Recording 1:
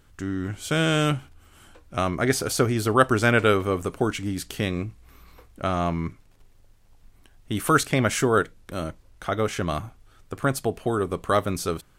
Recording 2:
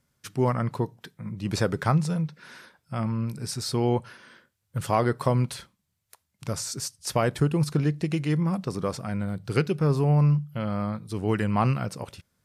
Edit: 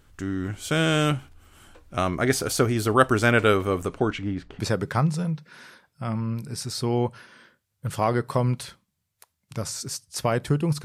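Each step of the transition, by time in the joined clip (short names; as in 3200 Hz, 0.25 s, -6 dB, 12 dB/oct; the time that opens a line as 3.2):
recording 1
3.86–4.59 LPF 7900 Hz -> 1200 Hz
4.59 switch to recording 2 from 1.5 s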